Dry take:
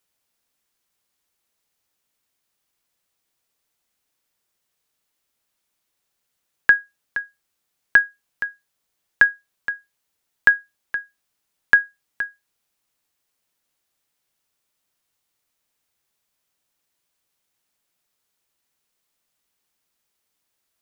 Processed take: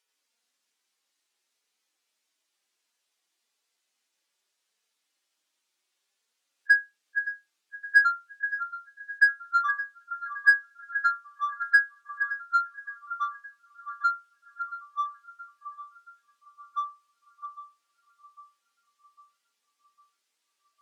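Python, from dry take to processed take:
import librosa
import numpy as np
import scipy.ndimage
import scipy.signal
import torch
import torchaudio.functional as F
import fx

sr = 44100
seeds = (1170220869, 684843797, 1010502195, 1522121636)

p1 = fx.hpss_only(x, sr, part='harmonic')
p2 = scipy.signal.sosfilt(scipy.signal.butter(4, 250.0, 'highpass', fs=sr, output='sos'), p1)
p3 = fx.high_shelf(p2, sr, hz=2100.0, db=10.0)
p4 = np.clip(p3, -10.0 ** (-18.0 / 20.0), 10.0 ** (-18.0 / 20.0))
p5 = p3 + F.gain(torch.from_numpy(p4), -4.0).numpy()
p6 = fx.air_absorb(p5, sr, metres=55.0)
p7 = p6 + fx.echo_banded(p6, sr, ms=568, feedback_pct=56, hz=1100.0, wet_db=-13.0, dry=0)
p8 = fx.echo_pitch(p7, sr, ms=84, semitones=-3, count=2, db_per_echo=-6.0)
y = F.gain(torch.from_numpy(p8), -6.0).numpy()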